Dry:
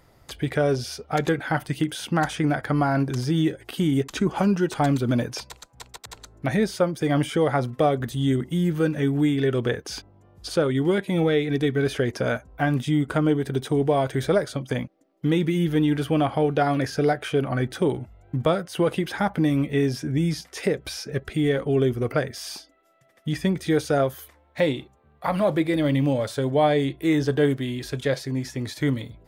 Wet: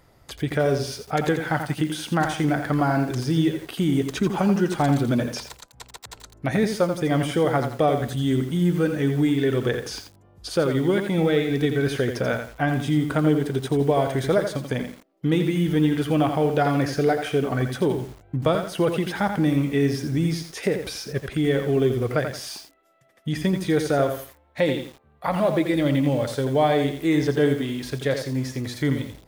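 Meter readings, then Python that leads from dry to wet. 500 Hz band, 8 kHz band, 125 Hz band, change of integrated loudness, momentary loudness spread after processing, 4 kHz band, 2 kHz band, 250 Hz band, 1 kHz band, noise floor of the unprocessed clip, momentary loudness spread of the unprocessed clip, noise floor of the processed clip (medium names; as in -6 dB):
+1.0 dB, +1.0 dB, +0.5 dB, +1.0 dB, 9 LU, +0.5 dB, +1.0 dB, +1.0 dB, +0.5 dB, -58 dBFS, 9 LU, -56 dBFS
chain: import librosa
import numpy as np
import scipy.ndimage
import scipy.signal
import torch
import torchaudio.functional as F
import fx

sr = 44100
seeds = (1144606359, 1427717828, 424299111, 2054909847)

y = fx.echo_crushed(x, sr, ms=85, feedback_pct=35, bits=7, wet_db=-7)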